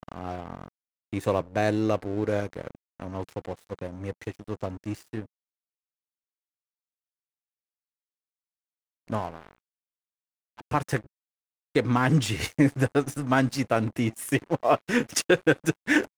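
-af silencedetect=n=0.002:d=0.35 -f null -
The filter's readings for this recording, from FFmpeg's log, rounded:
silence_start: 0.68
silence_end: 1.13 | silence_duration: 0.44
silence_start: 5.26
silence_end: 9.08 | silence_duration: 3.82
silence_start: 9.58
silence_end: 10.57 | silence_duration: 0.99
silence_start: 11.06
silence_end: 11.75 | silence_duration: 0.68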